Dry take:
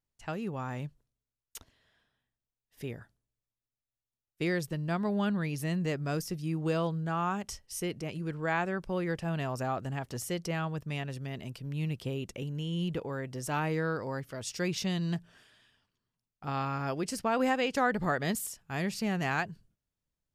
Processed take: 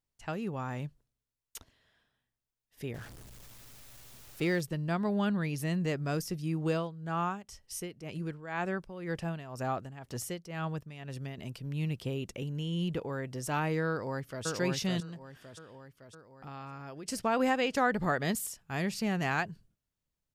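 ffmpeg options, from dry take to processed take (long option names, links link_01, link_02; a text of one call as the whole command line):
ffmpeg -i in.wav -filter_complex "[0:a]asettb=1/sr,asplit=3[link_01][link_02][link_03];[link_01]atrim=end=2.944[link_04];[link_02]atrim=start=2.94:end=4.61,asetpts=PTS-STARTPTS,afade=type=in:duration=0.004:curve=qsin,afade=type=out:start_time=1.666:duration=0.004:curve=qsin,aeval=exprs='val(0)+0.5*0.00708*sgn(val(0))':channel_layout=same[link_05];[link_03]atrim=start=4.606[link_06];[link_04][link_05]acrossfade=duration=0.004:curve1=hsin:curve2=qsin[link_07];[link_07][link_06]acrossfade=duration=0.004:curve1=qsin:curve2=hsin,asettb=1/sr,asplit=3[link_08][link_09][link_10];[link_08]atrim=end=6.704[link_11];[link_09]atrim=start=6.7:end=11.38,asetpts=PTS-STARTPTS,afade=type=in:duration=0.004:curve=qsin,afade=type=out:start_time=4.676:duration=0.004:curve=qsin,tremolo=f=2:d=0.76[link_12];[link_10]atrim=start=11.376[link_13];[link_11][link_12]acrossfade=duration=0.004:curve1=hsin:curve2=qsin[link_14];[link_14][link_13]acrossfade=duration=0.004:curve1=qsin:curve2=hsin,asplit=2[link_15][link_16];[link_16]afade=type=in:start_time=13.89:duration=0.01,afade=type=out:start_time=14.46:duration=0.01,aecho=0:1:560|1120|1680|2240|2800|3360|3920:0.794328|0.397164|0.198582|0.099291|0.0496455|0.0248228|0.0124114[link_17];[link_15][link_17]amix=inputs=2:normalize=0,asettb=1/sr,asplit=3[link_18][link_19][link_20];[link_18]atrim=end=15.004[link_21];[link_19]atrim=start=15:end=17.08,asetpts=PTS-STARTPTS,afade=type=in:duration=0.004:curve=qsin,afade=type=out:start_time=2.076:duration=0.004:curve=qsin,acompressor=threshold=-46dB:ratio=2.5:attack=3.2:release=140:knee=1:detection=peak[link_22];[link_20]atrim=start=17.076[link_23];[link_21][link_22]acrossfade=duration=0.004:curve1=hsin:curve2=qsin[link_24];[link_24][link_23]acrossfade=duration=0.004:curve1=qsin:curve2=hsin" out.wav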